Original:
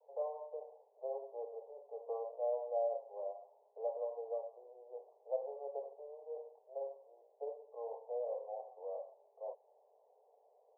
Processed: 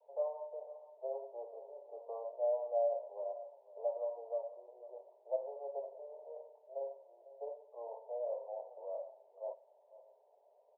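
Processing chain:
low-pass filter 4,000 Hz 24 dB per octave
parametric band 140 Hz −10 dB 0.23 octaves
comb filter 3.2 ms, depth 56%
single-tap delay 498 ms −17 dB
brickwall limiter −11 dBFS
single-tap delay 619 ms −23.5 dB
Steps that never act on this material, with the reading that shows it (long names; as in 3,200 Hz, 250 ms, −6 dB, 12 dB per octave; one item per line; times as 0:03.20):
low-pass filter 4,000 Hz: nothing at its input above 960 Hz
parametric band 140 Hz: nothing at its input below 380 Hz
brickwall limiter −11 dBFS: peak of its input −24.0 dBFS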